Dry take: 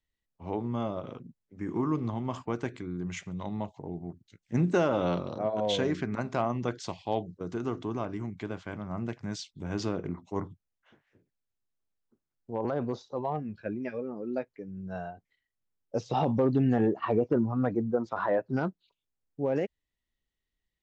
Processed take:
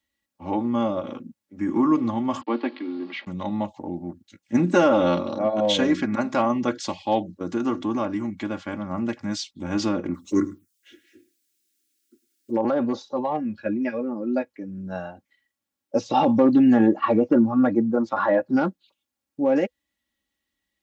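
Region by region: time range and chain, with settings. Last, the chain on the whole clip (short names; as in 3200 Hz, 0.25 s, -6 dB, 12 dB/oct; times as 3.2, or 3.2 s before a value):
2.41–3.27 level-crossing sampler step -50 dBFS + Chebyshev band-pass 230–4500 Hz, order 5 + notch 1500 Hz, Q 7.3
10.14–12.57 EQ curve 170 Hz 0 dB, 370 Hz +10 dB, 740 Hz -24 dB, 1400 Hz +6 dB, 8200 Hz +15 dB + envelope phaser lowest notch 150 Hz, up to 3200 Hz, full sweep at -28.5 dBFS + echo 0.105 s -20 dB
whole clip: HPF 110 Hz; notch 500 Hz, Q 12; comb 3.6 ms, depth 79%; gain +6.5 dB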